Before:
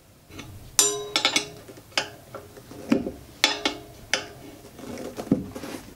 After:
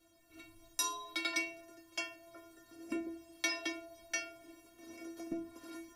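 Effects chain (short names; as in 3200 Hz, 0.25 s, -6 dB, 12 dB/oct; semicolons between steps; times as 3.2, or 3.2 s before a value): metallic resonator 330 Hz, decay 0.44 s, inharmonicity 0.008; gain +3.5 dB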